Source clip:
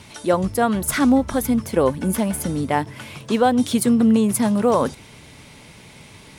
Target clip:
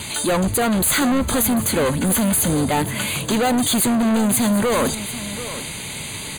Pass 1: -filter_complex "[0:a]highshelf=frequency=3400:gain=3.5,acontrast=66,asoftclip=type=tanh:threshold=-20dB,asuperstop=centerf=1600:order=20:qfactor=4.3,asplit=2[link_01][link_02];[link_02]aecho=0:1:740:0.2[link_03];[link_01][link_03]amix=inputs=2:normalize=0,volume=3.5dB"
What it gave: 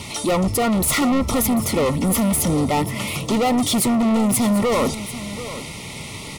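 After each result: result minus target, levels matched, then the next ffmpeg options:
8,000 Hz band −2.5 dB; 2,000 Hz band −2.5 dB
-filter_complex "[0:a]highshelf=frequency=3400:gain=12.5,acontrast=66,asoftclip=type=tanh:threshold=-20dB,asuperstop=centerf=1600:order=20:qfactor=4.3,asplit=2[link_01][link_02];[link_02]aecho=0:1:740:0.2[link_03];[link_01][link_03]amix=inputs=2:normalize=0,volume=3.5dB"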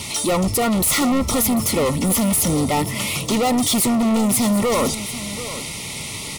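2,000 Hz band −2.5 dB
-filter_complex "[0:a]highshelf=frequency=3400:gain=12.5,acontrast=66,asoftclip=type=tanh:threshold=-20dB,asuperstop=centerf=5400:order=20:qfactor=4.3,asplit=2[link_01][link_02];[link_02]aecho=0:1:740:0.2[link_03];[link_01][link_03]amix=inputs=2:normalize=0,volume=3.5dB"

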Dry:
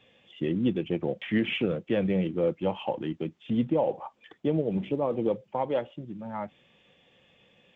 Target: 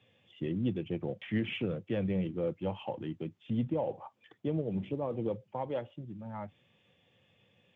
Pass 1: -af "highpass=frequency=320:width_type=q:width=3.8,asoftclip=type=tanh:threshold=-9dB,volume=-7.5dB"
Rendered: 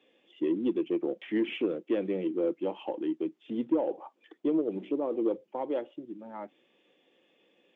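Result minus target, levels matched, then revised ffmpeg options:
125 Hz band −17.5 dB
-af "highpass=frequency=98:width_type=q:width=3.8,asoftclip=type=tanh:threshold=-9dB,volume=-7.5dB"

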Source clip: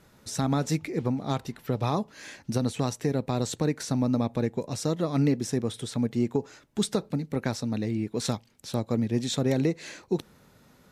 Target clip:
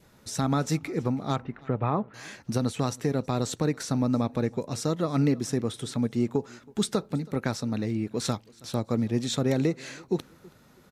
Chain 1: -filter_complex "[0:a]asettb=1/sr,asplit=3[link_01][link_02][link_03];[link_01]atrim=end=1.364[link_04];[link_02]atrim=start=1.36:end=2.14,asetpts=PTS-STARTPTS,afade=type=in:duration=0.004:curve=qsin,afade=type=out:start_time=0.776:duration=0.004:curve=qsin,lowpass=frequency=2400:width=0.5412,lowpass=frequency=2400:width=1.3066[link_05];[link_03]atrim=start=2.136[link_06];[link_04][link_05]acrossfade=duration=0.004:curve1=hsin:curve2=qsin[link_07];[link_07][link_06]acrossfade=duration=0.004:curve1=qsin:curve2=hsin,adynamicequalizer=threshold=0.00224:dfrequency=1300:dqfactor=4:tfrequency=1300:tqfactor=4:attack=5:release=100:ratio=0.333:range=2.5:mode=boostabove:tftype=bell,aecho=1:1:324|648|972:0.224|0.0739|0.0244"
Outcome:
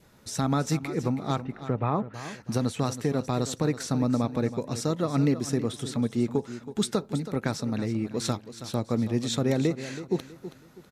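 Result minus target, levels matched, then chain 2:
echo-to-direct +11.5 dB
-filter_complex "[0:a]asettb=1/sr,asplit=3[link_01][link_02][link_03];[link_01]atrim=end=1.364[link_04];[link_02]atrim=start=1.36:end=2.14,asetpts=PTS-STARTPTS,afade=type=in:duration=0.004:curve=qsin,afade=type=out:start_time=0.776:duration=0.004:curve=qsin,lowpass=frequency=2400:width=0.5412,lowpass=frequency=2400:width=1.3066[link_05];[link_03]atrim=start=2.136[link_06];[link_04][link_05]acrossfade=duration=0.004:curve1=hsin:curve2=qsin[link_07];[link_07][link_06]acrossfade=duration=0.004:curve1=qsin:curve2=hsin,adynamicequalizer=threshold=0.00224:dfrequency=1300:dqfactor=4:tfrequency=1300:tqfactor=4:attack=5:release=100:ratio=0.333:range=2.5:mode=boostabove:tftype=bell,aecho=1:1:324|648:0.0596|0.0197"

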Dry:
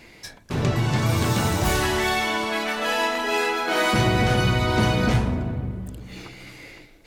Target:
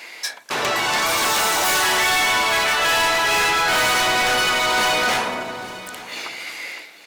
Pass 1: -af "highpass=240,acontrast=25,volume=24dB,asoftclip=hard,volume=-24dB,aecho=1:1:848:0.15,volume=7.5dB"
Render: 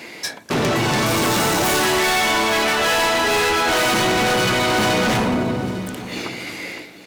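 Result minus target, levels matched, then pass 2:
250 Hz band +12.0 dB
-af "highpass=790,acontrast=25,volume=24dB,asoftclip=hard,volume=-24dB,aecho=1:1:848:0.15,volume=7.5dB"

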